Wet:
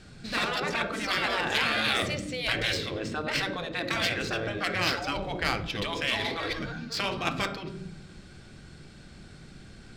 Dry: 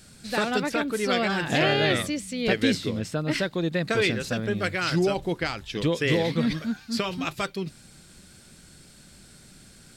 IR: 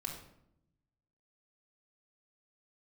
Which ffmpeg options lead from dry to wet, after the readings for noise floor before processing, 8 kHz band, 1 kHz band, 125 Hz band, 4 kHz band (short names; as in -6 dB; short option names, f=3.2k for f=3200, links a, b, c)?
-52 dBFS, -3.0 dB, -0.5 dB, -7.0 dB, +1.0 dB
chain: -filter_complex "[0:a]asplit=2[a][b];[1:a]atrim=start_sample=2205[c];[b][c]afir=irnorm=-1:irlink=0,volume=-2.5dB[d];[a][d]amix=inputs=2:normalize=0,afftfilt=real='re*lt(hypot(re,im),0.251)':imag='im*lt(hypot(re,im),0.251)':win_size=1024:overlap=0.75,adynamicsmooth=sensitivity=2.5:basefreq=4k"